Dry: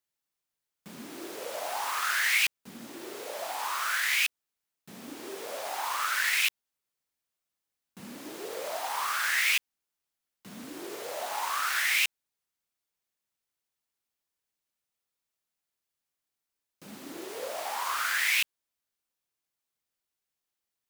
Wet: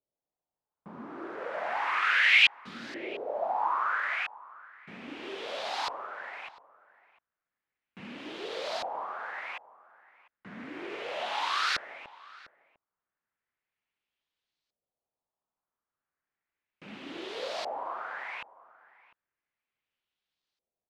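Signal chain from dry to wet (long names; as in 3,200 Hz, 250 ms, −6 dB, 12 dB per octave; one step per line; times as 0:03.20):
auto-filter low-pass saw up 0.34 Hz 550–4,500 Hz
slap from a distant wall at 120 metres, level −19 dB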